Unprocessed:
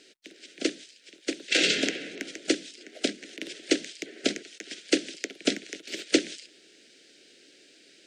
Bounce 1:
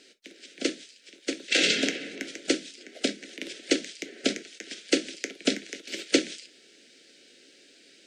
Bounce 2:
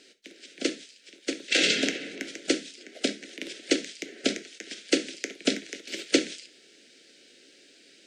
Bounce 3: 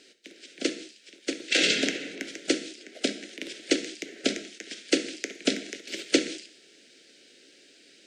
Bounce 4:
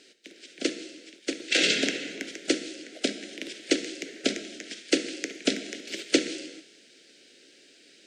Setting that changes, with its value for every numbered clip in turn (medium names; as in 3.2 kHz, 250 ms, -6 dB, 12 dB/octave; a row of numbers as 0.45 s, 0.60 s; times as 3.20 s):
gated-style reverb, gate: 80 ms, 120 ms, 240 ms, 470 ms